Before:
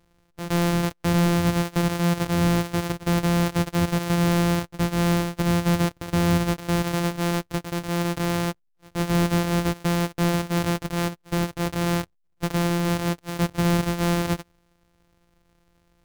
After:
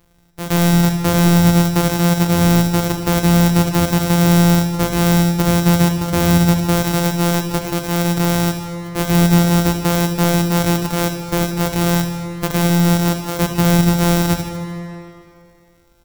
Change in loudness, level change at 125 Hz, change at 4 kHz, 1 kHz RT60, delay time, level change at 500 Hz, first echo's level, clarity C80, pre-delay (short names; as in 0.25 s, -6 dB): +8.0 dB, +8.5 dB, +8.0 dB, 2.8 s, 76 ms, +7.0 dB, -11.0 dB, 6.0 dB, 22 ms